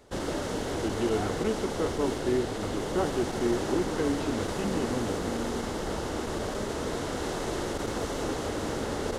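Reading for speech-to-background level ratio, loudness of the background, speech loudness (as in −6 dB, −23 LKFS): 0.5 dB, −32.5 LKFS, −32.0 LKFS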